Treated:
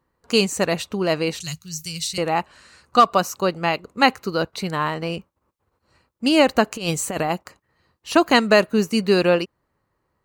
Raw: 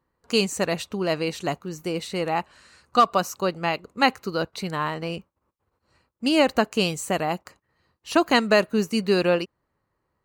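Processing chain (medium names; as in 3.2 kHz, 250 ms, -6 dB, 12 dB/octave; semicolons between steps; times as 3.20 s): 1.40–2.18 s: FFT filter 160 Hz 0 dB, 240 Hz -23 dB, 720 Hz -26 dB, 5.4 kHz +11 dB, 12 kHz +7 dB; 6.67–7.30 s: compressor with a negative ratio -26 dBFS, ratio -0.5; trim +3.5 dB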